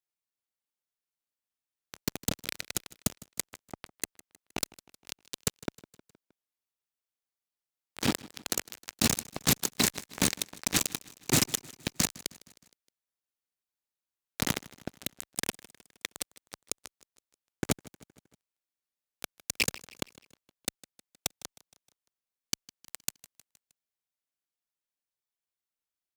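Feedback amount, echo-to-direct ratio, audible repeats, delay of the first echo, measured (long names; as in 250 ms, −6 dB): 55%, −19.5 dB, 3, 156 ms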